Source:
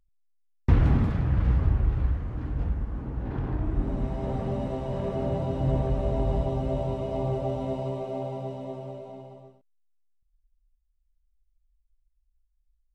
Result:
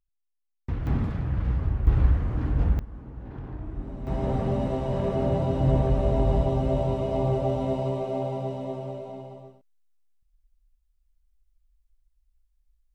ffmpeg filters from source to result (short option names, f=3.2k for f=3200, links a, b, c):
-af "asetnsamples=n=441:p=0,asendcmd='0.87 volume volume -3dB;1.87 volume volume 5.5dB;2.79 volume volume -7.5dB;4.07 volume volume 3.5dB',volume=-10.5dB"